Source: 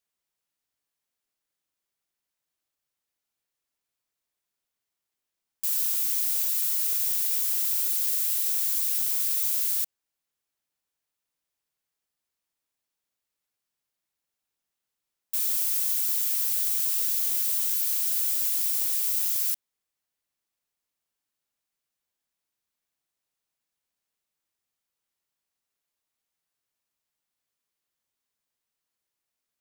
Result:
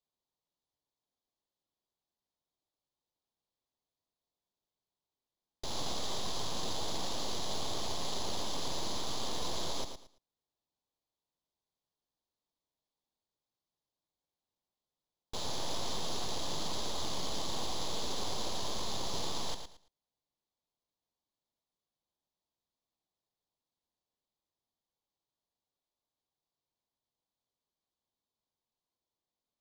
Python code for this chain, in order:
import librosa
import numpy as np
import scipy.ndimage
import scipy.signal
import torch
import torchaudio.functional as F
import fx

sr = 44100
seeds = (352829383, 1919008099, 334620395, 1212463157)

y = fx.tracing_dist(x, sr, depth_ms=0.072)
y = fx.band_shelf(y, sr, hz=1900.0, db=-14.5, octaves=1.3)
y = (np.kron(scipy.signal.resample_poly(y, 1, 4), np.eye(4)[0]) * 4)[:len(y)]
y = fx.air_absorb(y, sr, metres=140.0)
y = fx.echo_feedback(y, sr, ms=112, feedback_pct=23, wet_db=-8.0)